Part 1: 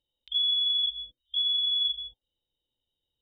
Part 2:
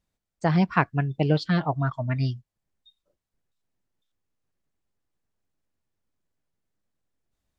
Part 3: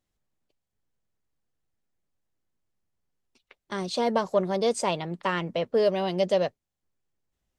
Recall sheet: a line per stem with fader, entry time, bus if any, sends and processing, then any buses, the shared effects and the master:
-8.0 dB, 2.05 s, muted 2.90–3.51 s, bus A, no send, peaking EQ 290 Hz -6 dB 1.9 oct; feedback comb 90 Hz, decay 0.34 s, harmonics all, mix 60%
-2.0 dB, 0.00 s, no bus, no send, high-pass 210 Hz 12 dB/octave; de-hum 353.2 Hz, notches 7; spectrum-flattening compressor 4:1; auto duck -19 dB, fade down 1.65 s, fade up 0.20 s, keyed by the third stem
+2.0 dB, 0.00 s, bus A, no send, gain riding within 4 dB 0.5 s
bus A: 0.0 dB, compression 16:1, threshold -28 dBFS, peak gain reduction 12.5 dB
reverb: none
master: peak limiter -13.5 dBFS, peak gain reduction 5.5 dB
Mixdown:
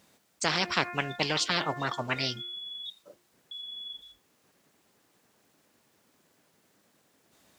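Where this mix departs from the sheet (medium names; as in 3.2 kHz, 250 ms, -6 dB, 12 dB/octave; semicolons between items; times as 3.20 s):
stem 3: muted; master: missing peak limiter -13.5 dBFS, peak gain reduction 5.5 dB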